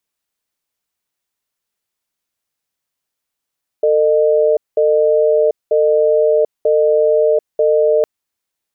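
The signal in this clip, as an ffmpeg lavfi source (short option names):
-f lavfi -i "aevalsrc='0.237*(sin(2*PI*449*t)+sin(2*PI*610*t))*clip(min(mod(t,0.94),0.74-mod(t,0.94))/0.005,0,1)':d=4.21:s=44100"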